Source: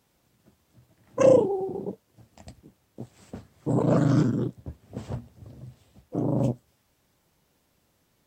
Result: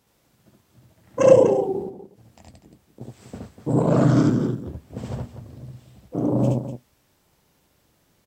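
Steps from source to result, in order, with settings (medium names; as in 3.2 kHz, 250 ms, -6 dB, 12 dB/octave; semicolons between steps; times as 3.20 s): 1.82–3.01 s: compression 2.5:1, threshold -50 dBFS, peak gain reduction 14 dB; on a send: loudspeakers at several distances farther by 24 m -1 dB, 84 m -10 dB; on the sum: trim +2 dB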